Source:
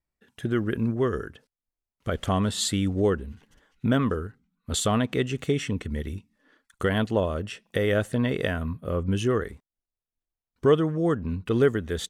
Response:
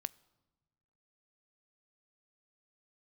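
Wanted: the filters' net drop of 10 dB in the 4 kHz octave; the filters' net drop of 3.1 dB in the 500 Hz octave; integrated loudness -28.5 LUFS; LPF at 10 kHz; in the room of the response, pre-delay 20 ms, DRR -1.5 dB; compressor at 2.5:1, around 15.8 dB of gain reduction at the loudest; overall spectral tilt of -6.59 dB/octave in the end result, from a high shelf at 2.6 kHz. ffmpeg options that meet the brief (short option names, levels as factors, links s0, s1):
-filter_complex "[0:a]lowpass=10000,equalizer=f=500:t=o:g=-3.5,highshelf=f=2600:g=-8,equalizer=f=4000:t=o:g=-6,acompressor=threshold=0.00794:ratio=2.5,asplit=2[s0][s1];[1:a]atrim=start_sample=2205,adelay=20[s2];[s1][s2]afir=irnorm=-1:irlink=0,volume=1.5[s3];[s0][s3]amix=inputs=2:normalize=0,volume=2.66"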